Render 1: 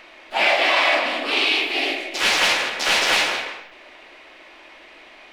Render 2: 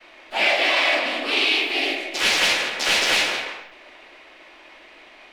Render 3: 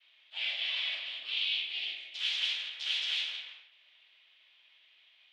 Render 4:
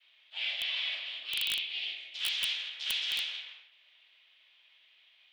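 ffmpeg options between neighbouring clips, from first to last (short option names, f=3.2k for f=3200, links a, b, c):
-filter_complex "[0:a]agate=range=-33dB:threshold=-43dB:ratio=3:detection=peak,acrossover=split=740|1400[a][b][c];[b]acompressor=threshold=-38dB:ratio=6[d];[a][d][c]amix=inputs=3:normalize=0"
-af "bandpass=f=3.3k:t=q:w=4.9:csg=0,volume=-6.5dB"
-af "highpass=230,aeval=exprs='(mod(12.6*val(0)+1,2)-1)/12.6':c=same"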